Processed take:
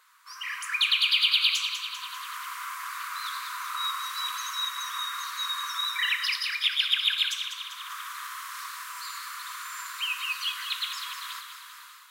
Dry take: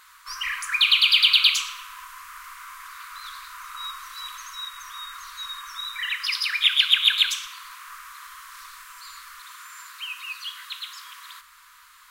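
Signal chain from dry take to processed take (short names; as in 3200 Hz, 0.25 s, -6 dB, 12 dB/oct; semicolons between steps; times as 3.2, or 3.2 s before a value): AGC gain up to 13.5 dB; ladder high-pass 400 Hz, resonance 55%; thinning echo 0.197 s, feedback 61%, high-pass 1100 Hz, level -8 dB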